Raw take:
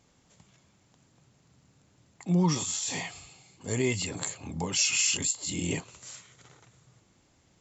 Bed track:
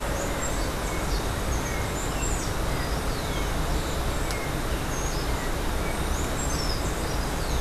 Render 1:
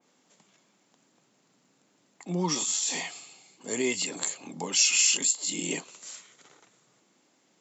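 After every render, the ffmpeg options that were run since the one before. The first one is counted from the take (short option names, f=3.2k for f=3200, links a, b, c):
-af "highpass=f=210:w=0.5412,highpass=f=210:w=1.3066,adynamicequalizer=threshold=0.00708:dfrequency=2600:dqfactor=0.7:tfrequency=2600:tqfactor=0.7:attack=5:release=100:ratio=0.375:range=2:mode=boostabove:tftype=highshelf"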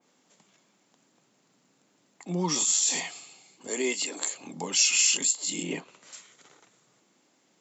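-filter_complex "[0:a]asettb=1/sr,asplit=3[a][b][c];[a]atrim=end=2.544[d];[b]atrim=start=2.54:end=3,asetpts=PTS-STARTPTS,afade=t=in:d=0.004:c=qsin,afade=t=out:st=0.456:d=0.004:c=qsin,highshelf=f=5.7k:g=7.5[e];[c]atrim=start=2.996[f];[d][e]acrossfade=d=0.004:c1=hsin:c2=qsin[g];[g][f]acrossfade=d=0.004:c1=qsin:c2=hsin,asettb=1/sr,asplit=3[h][i][j];[h]atrim=end=3.674[k];[i]atrim=start=3.67:end=4.35,asetpts=PTS-STARTPTS,afade=t=in:d=0.004:c=qsin,afade=t=out:st=0.676:d=0.004:c=qsin,highpass=f=250:w=0.5412,highpass=f=250:w=1.3066[l];[j]atrim=start=4.346[m];[k][l]acrossfade=d=0.004:c1=hsin:c2=qsin[n];[n][m]acrossfade=d=0.004:c1=qsin:c2=hsin,asettb=1/sr,asplit=3[o][p][q];[o]atrim=end=5.634[r];[p]atrim=start=5.63:end=6.13,asetpts=PTS-STARTPTS,afade=t=in:d=0.004:c=qsin,afade=t=out:st=0.496:d=0.004:c=qsin,bass=f=250:g=2,treble=f=4k:g=-15[s];[q]atrim=start=6.126[t];[r][s]acrossfade=d=0.004:c1=hsin:c2=qsin[u];[u][t]acrossfade=d=0.004:c1=qsin:c2=hsin"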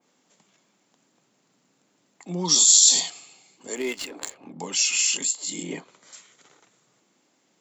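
-filter_complex "[0:a]asettb=1/sr,asplit=3[a][b][c];[a]atrim=end=2.454[d];[b]atrim=start=2.45:end=3.1,asetpts=PTS-STARTPTS,afade=t=in:d=0.004:c=qsin,afade=t=out:st=0.646:d=0.004:c=qsin,highshelf=f=3k:t=q:w=3:g=8[e];[c]atrim=start=3.096[f];[d][e]acrossfade=d=0.004:c1=hsin:c2=qsin[g];[g][f]acrossfade=d=0.004:c1=qsin:c2=hsin,asettb=1/sr,asplit=3[h][i][j];[h]atrim=end=3.754[k];[i]atrim=start=3.75:end=4.6,asetpts=PTS-STARTPTS,afade=t=in:d=0.004:c=qsin,afade=t=out:st=0.846:d=0.004:c=qsin,adynamicsmooth=sensitivity=6:basefreq=1.3k[l];[j]atrim=start=4.596[m];[k][l]acrossfade=d=0.004:c1=hsin:c2=qsin[n];[n][m]acrossfade=d=0.004:c1=qsin:c2=hsin,asettb=1/sr,asplit=3[o][p][q];[o]atrim=end=5.484[r];[p]atrim=start=5.48:end=6.16,asetpts=PTS-STARTPTS,afade=t=in:d=0.004:c=qsin,afade=t=out:st=0.676:d=0.004:c=qsin,bandreject=f=2.7k:w=6.1[s];[q]atrim=start=6.156[t];[r][s]acrossfade=d=0.004:c1=hsin:c2=qsin[u];[u][t]acrossfade=d=0.004:c1=qsin:c2=hsin"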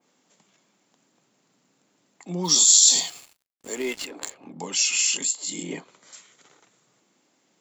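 -filter_complex "[0:a]asplit=3[a][b][c];[a]afade=t=out:st=2.43:d=0.02[d];[b]acrusher=bits=6:mix=0:aa=0.5,afade=t=in:st=2.43:d=0.02,afade=t=out:st=4.01:d=0.02[e];[c]afade=t=in:st=4.01:d=0.02[f];[d][e][f]amix=inputs=3:normalize=0"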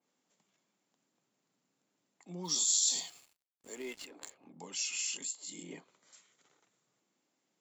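-af "volume=-14dB"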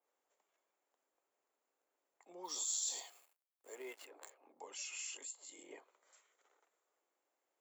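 -af "highpass=f=430:w=0.5412,highpass=f=430:w=1.3066,equalizer=f=4.7k:w=0.61:g=-12.5"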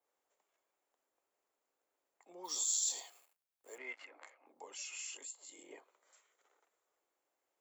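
-filter_complex "[0:a]asettb=1/sr,asplit=3[a][b][c];[a]atrim=end=2.444[d];[b]atrim=start=2.44:end=2.92,asetpts=PTS-STARTPTS,afade=t=in:d=0.004:c=qsin,afade=t=out:st=0.476:d=0.004:c=qsin,highshelf=f=4.1k:g=5.5[e];[c]atrim=start=2.916[f];[d][e]acrossfade=d=0.004:c1=hsin:c2=qsin[g];[g][f]acrossfade=d=0.004:c1=qsin:c2=hsin,asettb=1/sr,asplit=3[h][i][j];[h]atrim=end=3.784[k];[i]atrim=start=3.78:end=4.46,asetpts=PTS-STARTPTS,afade=t=in:d=0.004:c=qsin,afade=t=out:st=0.676:d=0.004:c=qsin,highpass=230,equalizer=f=250:t=q:w=4:g=4,equalizer=f=410:t=q:w=4:g=-9,equalizer=f=1.3k:t=q:w=4:g=4,equalizer=f=2.1k:t=q:w=4:g=10,equalizer=f=3.8k:t=q:w=4:g=-4,equalizer=f=5.4k:t=q:w=4:g=-4,lowpass=f=5.9k:w=0.5412,lowpass=f=5.9k:w=1.3066[l];[j]atrim=start=4.456[m];[k][l]acrossfade=d=0.004:c1=hsin:c2=qsin[n];[n][m]acrossfade=d=0.004:c1=qsin:c2=hsin"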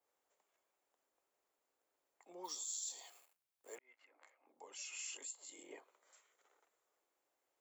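-filter_complex "[0:a]asplit=4[a][b][c][d];[a]atrim=end=2.57,asetpts=PTS-STARTPTS,afade=t=out:st=2.44:d=0.13:silence=0.334965[e];[b]atrim=start=2.57:end=2.98,asetpts=PTS-STARTPTS,volume=-9.5dB[f];[c]atrim=start=2.98:end=3.79,asetpts=PTS-STARTPTS,afade=t=in:d=0.13:silence=0.334965,afade=t=out:st=0.806:d=0.004:c=hsin[g];[d]atrim=start=3.79,asetpts=PTS-STARTPTS,afade=t=in:d=1.43[h];[e][f][g][h]concat=n=4:v=0:a=1"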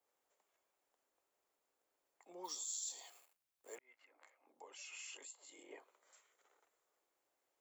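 -filter_complex "[0:a]asettb=1/sr,asplit=3[a][b][c];[a]atrim=end=4.624[d];[b]atrim=start=4.62:end=5.8,asetpts=PTS-STARTPTS,afade=t=in:d=0.004:c=qsin,afade=t=out:st=1.176:d=0.004:c=qsin,bass=f=250:g=-8,treble=f=4k:g=-7[e];[c]atrim=start=5.796[f];[d][e]acrossfade=d=0.004:c1=hsin:c2=qsin[g];[g][f]acrossfade=d=0.004:c1=qsin:c2=hsin"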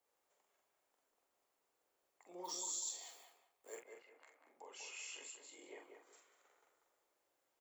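-filter_complex "[0:a]asplit=2[a][b];[b]adelay=45,volume=-5dB[c];[a][c]amix=inputs=2:normalize=0,asplit=2[d][e];[e]adelay=191,lowpass=f=2.4k:p=1,volume=-5.5dB,asplit=2[f][g];[g]adelay=191,lowpass=f=2.4k:p=1,volume=0.29,asplit=2[h][i];[i]adelay=191,lowpass=f=2.4k:p=1,volume=0.29,asplit=2[j][k];[k]adelay=191,lowpass=f=2.4k:p=1,volume=0.29[l];[d][f][h][j][l]amix=inputs=5:normalize=0"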